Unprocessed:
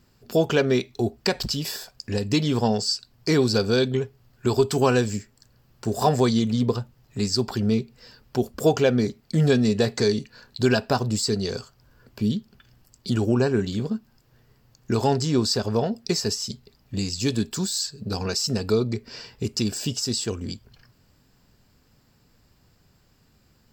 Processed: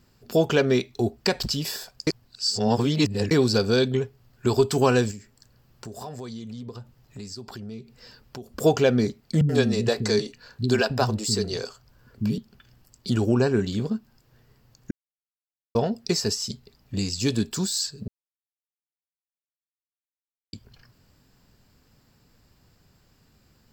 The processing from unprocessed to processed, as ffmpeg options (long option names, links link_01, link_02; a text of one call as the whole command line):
ffmpeg -i in.wav -filter_complex "[0:a]asettb=1/sr,asplit=3[link_01][link_02][link_03];[link_01]atrim=end=5.114[link_04];[link_02]atrim=start=5.11:end=8.56,asetpts=PTS-STARTPTS,afade=type=in:duration=0.004:curve=qsin,afade=type=out:start_time=3.446:duration=0.004:curve=qsin,acompressor=threshold=-37dB:ratio=4:attack=3.2:release=140:knee=1:detection=peak[link_05];[link_03]atrim=start=8.556[link_06];[link_04][link_05]acrossfade=duration=0.004:curve1=hsin:curve2=qsin[link_07];[link_07][link_06]acrossfade=duration=0.004:curve1=qsin:curve2=hsin,asettb=1/sr,asplit=3[link_08][link_09][link_10];[link_08]atrim=end=9.414[link_11];[link_09]atrim=start=9.41:end=12.38,asetpts=PTS-STARTPTS,afade=type=in:duration=0.004:curve=qsin,afade=type=out:start_time=2.966:duration=0.004:curve=qsin,acrossover=split=270[link_12][link_13];[link_13]adelay=80[link_14];[link_12][link_14]amix=inputs=2:normalize=0,atrim=end_sample=130977[link_15];[link_10]atrim=start=12.376[link_16];[link_11][link_15]acrossfade=duration=0.004:curve1=hsin:curve2=qsin[link_17];[link_17][link_16]acrossfade=duration=0.004:curve1=qsin:curve2=hsin,asplit=7[link_18][link_19][link_20][link_21][link_22][link_23][link_24];[link_18]atrim=end=2.072[link_25];[link_19]atrim=start=2.068:end=3.312,asetpts=PTS-STARTPTS,areverse[link_26];[link_20]atrim=start=3.308:end=14.91,asetpts=PTS-STARTPTS,afade=type=out:start_time=11.598:duration=0.004:curve=hsin[link_27];[link_21]atrim=start=14.91:end=15.75,asetpts=PTS-STARTPTS,volume=0[link_28];[link_22]atrim=start=15.75:end=18.08,asetpts=PTS-STARTPTS,afade=type=in:duration=0.004:curve=hsin,afade=type=out:start_time=2.326:duration=0.004:curve=hsin[link_29];[link_23]atrim=start=18.08:end=20.53,asetpts=PTS-STARTPTS,volume=0[link_30];[link_24]atrim=start=20.53,asetpts=PTS-STARTPTS,afade=type=in:duration=0.004:curve=hsin[link_31];[link_25][link_26]acrossfade=duration=0.004:curve1=hsin:curve2=hsin[link_32];[link_27][link_28][link_29][link_30][link_31]concat=n=5:v=0:a=1[link_33];[link_32][link_33]acrossfade=duration=0.004:curve1=hsin:curve2=hsin" out.wav